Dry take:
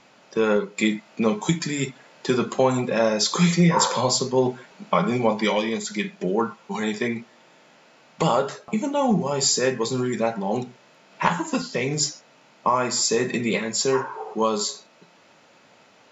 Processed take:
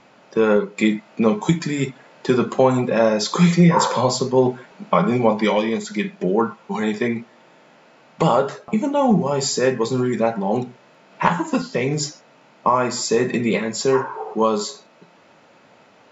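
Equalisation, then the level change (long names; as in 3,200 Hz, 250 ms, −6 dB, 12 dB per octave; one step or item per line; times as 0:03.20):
high-shelf EQ 2,800 Hz −9 dB
+4.5 dB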